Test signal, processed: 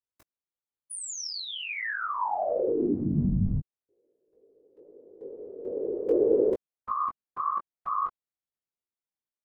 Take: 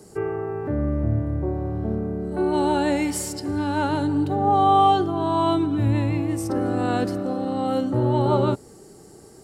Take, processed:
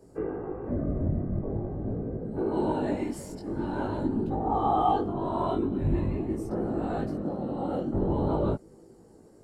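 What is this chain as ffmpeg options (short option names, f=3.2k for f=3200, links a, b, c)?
-af "afftfilt=real='hypot(re,im)*cos(2*PI*random(0))':imag='hypot(re,im)*sin(2*PI*random(1))':win_size=512:overlap=0.75,flanger=delay=18:depth=3.3:speed=0.45,tiltshelf=f=1.4k:g=6,volume=-2.5dB"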